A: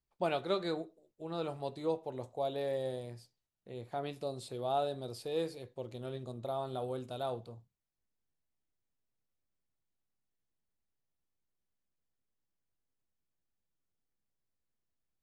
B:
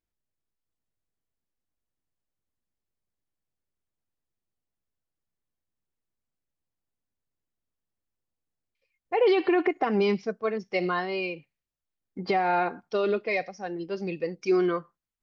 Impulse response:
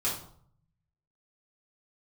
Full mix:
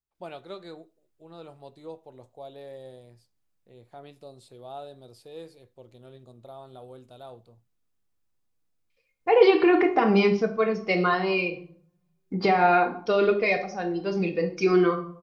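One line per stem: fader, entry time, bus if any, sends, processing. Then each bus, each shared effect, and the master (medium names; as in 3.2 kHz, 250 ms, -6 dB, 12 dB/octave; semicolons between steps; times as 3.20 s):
-7.0 dB, 0.00 s, no send, none
+2.0 dB, 0.15 s, send -9.5 dB, none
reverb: on, RT60 0.60 s, pre-delay 4 ms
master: none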